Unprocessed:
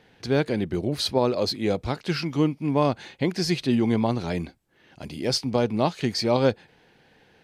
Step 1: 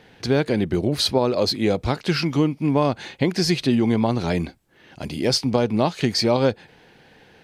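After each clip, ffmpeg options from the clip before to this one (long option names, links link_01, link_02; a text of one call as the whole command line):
ffmpeg -i in.wav -af "acompressor=threshold=-23dB:ratio=2.5,volume=6.5dB" out.wav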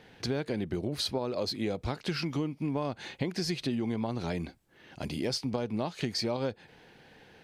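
ffmpeg -i in.wav -af "acompressor=threshold=-26dB:ratio=3,volume=-4.5dB" out.wav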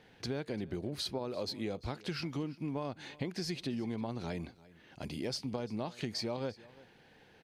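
ffmpeg -i in.wav -af "aecho=1:1:345:0.0891,volume=-5.5dB" out.wav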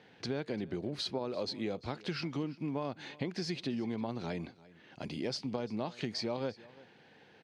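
ffmpeg -i in.wav -af "highpass=120,lowpass=5900,volume=1.5dB" out.wav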